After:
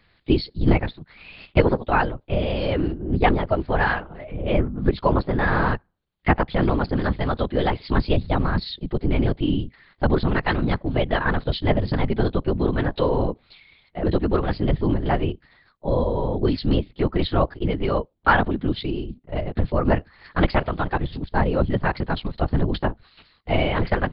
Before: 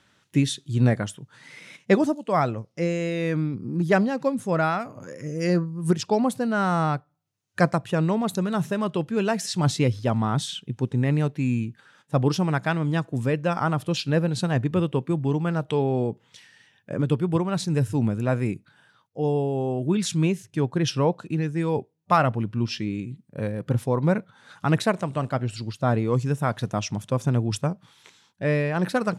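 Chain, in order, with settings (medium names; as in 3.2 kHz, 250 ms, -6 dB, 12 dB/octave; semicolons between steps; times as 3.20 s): LPC vocoder at 8 kHz whisper; tape speed +21%; trim +2.5 dB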